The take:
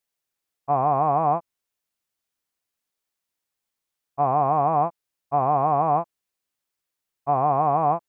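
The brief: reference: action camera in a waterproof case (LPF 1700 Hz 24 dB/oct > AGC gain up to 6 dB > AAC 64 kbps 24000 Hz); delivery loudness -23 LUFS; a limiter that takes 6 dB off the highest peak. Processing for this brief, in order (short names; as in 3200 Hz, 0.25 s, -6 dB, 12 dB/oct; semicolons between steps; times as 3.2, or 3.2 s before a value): limiter -16.5 dBFS; LPF 1700 Hz 24 dB/oct; AGC gain up to 6 dB; gain +3.5 dB; AAC 64 kbps 24000 Hz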